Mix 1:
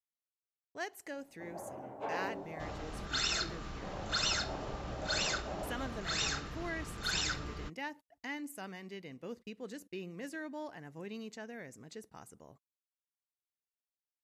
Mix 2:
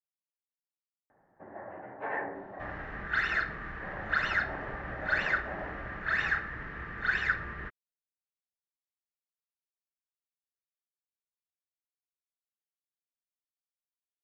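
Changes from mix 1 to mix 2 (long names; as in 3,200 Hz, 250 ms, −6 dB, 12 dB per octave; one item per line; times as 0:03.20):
speech: muted
master: add low-pass with resonance 1,800 Hz, resonance Q 7.7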